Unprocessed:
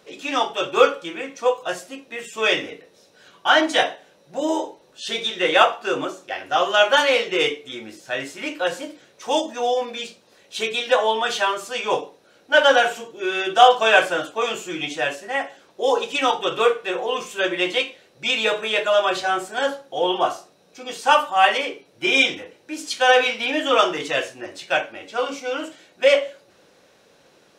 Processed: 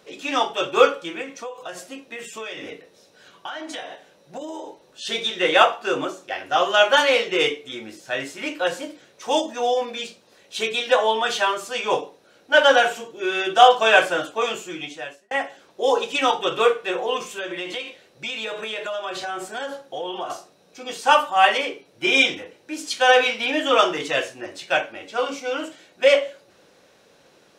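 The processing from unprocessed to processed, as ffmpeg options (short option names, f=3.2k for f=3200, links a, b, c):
-filter_complex "[0:a]asettb=1/sr,asplit=3[a][b][c];[a]atrim=end=1.224[d];[b]atrim=start=1.22:end=5.05,asetpts=PTS-STARTPTS,afade=t=in:d=0.004:c=qsin,afade=t=out:st=3.826:d=0.004:c=qsin,acompressor=threshold=-29dB:ratio=12:attack=3.2:release=140:knee=1:detection=peak[e];[c]atrim=start=5.046[f];[d][e]acrossfade=d=0.004:c1=hsin:c2=qsin[g];[g][f]acrossfade=d=0.004:c1=qsin:c2=hsin,asettb=1/sr,asplit=3[h][i][j];[h]atrim=end=17.174[k];[i]atrim=start=17.17:end=20.3,asetpts=PTS-STARTPTS,afade=t=in:d=0.004:c=qsin,afade=t=out:st=3.126:d=0.004:c=qsin,acompressor=threshold=-26dB:ratio=6:attack=3.2:release=140:knee=1:detection=peak[l];[j]atrim=start=20.296[m];[k][l]acrossfade=d=0.004:c1=hsin:c2=qsin[n];[n][m]acrossfade=d=0.004:c1=qsin:c2=hsin,asplit=2[o][p];[o]atrim=end=15.31,asetpts=PTS-STARTPTS,afade=t=out:st=14.42:d=0.89[q];[p]atrim=start=15.31,asetpts=PTS-STARTPTS,afade=t=in:d=0.004:c=hsin[r];[q][r]concat=n=2:v=0:a=1"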